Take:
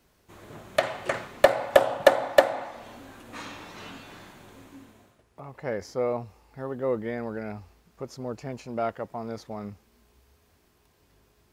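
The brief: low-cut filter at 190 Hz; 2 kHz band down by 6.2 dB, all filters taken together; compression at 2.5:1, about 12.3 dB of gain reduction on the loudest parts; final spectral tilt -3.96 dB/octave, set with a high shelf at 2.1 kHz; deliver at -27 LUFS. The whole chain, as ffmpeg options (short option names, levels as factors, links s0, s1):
-af "highpass=190,equalizer=f=2000:t=o:g=-5.5,highshelf=f=2100:g=-4,acompressor=threshold=0.0282:ratio=2.5,volume=3.35"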